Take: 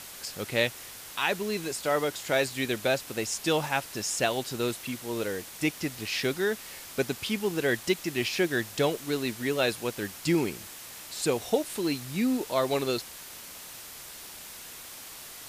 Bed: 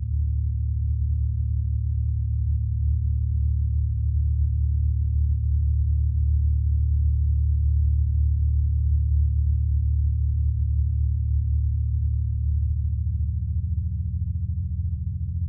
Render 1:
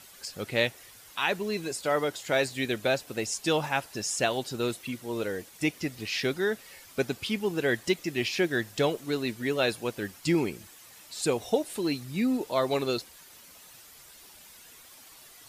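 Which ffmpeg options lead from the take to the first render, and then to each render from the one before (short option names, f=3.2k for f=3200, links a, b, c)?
-af "afftdn=nr=10:nf=-44"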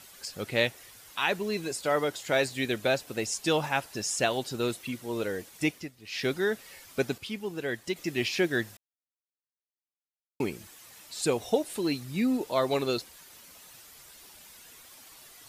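-filter_complex "[0:a]asplit=7[a][b][c][d][e][f][g];[a]atrim=end=5.92,asetpts=PTS-STARTPTS,afade=t=out:st=5.67:d=0.25:silence=0.188365[h];[b]atrim=start=5.92:end=6.03,asetpts=PTS-STARTPTS,volume=-14.5dB[i];[c]atrim=start=6.03:end=7.182,asetpts=PTS-STARTPTS,afade=t=in:d=0.25:silence=0.188365[j];[d]atrim=start=7.178:end=7.962,asetpts=PTS-STARTPTS,volume=-6dB[k];[e]atrim=start=7.958:end=8.77,asetpts=PTS-STARTPTS,afade=t=out:st=0.808:d=0.004:c=hsin[l];[f]atrim=start=8.77:end=10.4,asetpts=PTS-STARTPTS,volume=0[m];[g]atrim=start=10.4,asetpts=PTS-STARTPTS,afade=t=in:d=0.004:c=hsin[n];[h][i][j]concat=n=3:v=0:a=1[o];[o][k]acrossfade=d=0.004:c1=hsin:c2=hsin[p];[l][m][n]concat=n=3:v=0:a=1[q];[p][q]acrossfade=d=0.004:c1=hsin:c2=hsin"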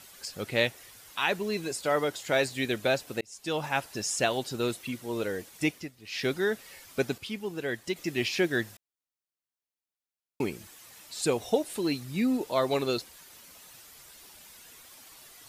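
-filter_complex "[0:a]asplit=2[a][b];[a]atrim=end=3.21,asetpts=PTS-STARTPTS,afade=t=out:st=3.206:d=0.004:c=hsin[c];[b]atrim=start=3.21,asetpts=PTS-STARTPTS,afade=t=in:d=0.57[d];[c][d]concat=n=2:v=0:a=1"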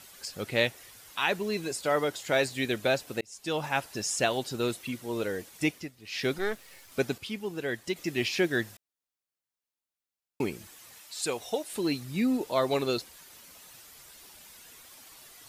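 -filter_complex "[0:a]asettb=1/sr,asplit=3[a][b][c];[a]atrim=end=6.384[d];[b]atrim=start=6.38:end=6.92,asetpts=PTS-STARTPTS,afade=t=in:d=0.004:c=qsin,afade=t=out:st=0.536:d=0.004:c=qsin,aeval=exprs='if(lt(val(0),0),0.251*val(0),val(0))':c=same[e];[c]atrim=start=6.916[f];[d][e]acrossfade=d=0.004:c1=hsin:c2=qsin[g];[g][f]acrossfade=d=0.004:c1=qsin:c2=hsin,asettb=1/sr,asplit=3[h][i][j];[h]atrim=end=10.984[k];[i]atrim=start=10.98:end=11.73,asetpts=PTS-STARTPTS,afade=t=in:d=0.004:c=qsin,afade=t=out:st=0.746:d=0.004:c=qsin,lowshelf=f=470:g=-11[l];[j]atrim=start=11.726[m];[k][l]acrossfade=d=0.004:c1=hsin:c2=qsin[n];[n][m]acrossfade=d=0.004:c1=qsin:c2=hsin"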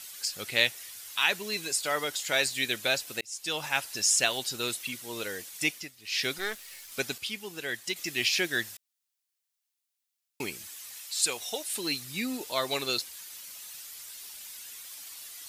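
-af "tiltshelf=f=1.4k:g=-8.5"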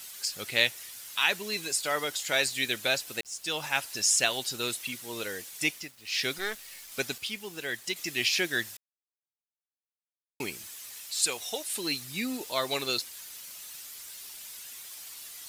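-af "acrusher=bits=8:mix=0:aa=0.000001"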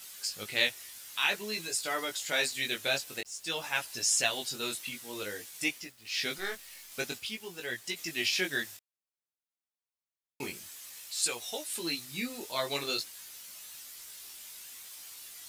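-af "flanger=delay=16.5:depth=5.3:speed=0.52"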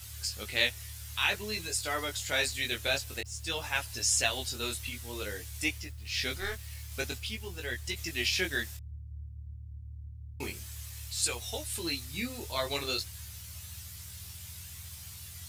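-filter_complex "[1:a]volume=-22.5dB[a];[0:a][a]amix=inputs=2:normalize=0"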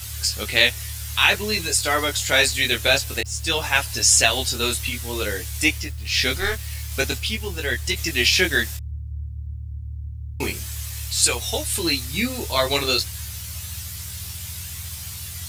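-af "volume=12dB,alimiter=limit=-2dB:level=0:latency=1"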